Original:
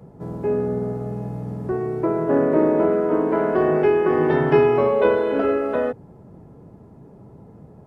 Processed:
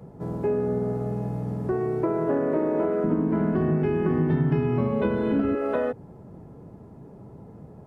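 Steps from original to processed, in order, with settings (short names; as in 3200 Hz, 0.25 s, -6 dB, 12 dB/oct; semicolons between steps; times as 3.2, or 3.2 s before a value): 3.04–5.55 resonant low shelf 310 Hz +13.5 dB, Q 1.5; compressor 5:1, threshold -21 dBFS, peak gain reduction 14.5 dB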